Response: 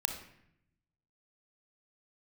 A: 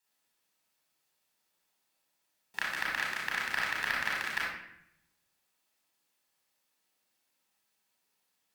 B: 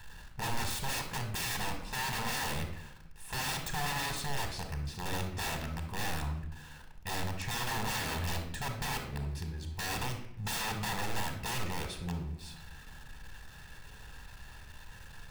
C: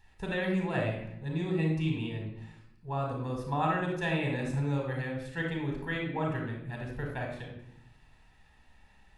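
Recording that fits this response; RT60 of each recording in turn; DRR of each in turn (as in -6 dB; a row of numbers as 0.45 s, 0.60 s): B; 0.75 s, 0.75 s, 0.75 s; -4.0 dB, 5.0 dB, 1.0 dB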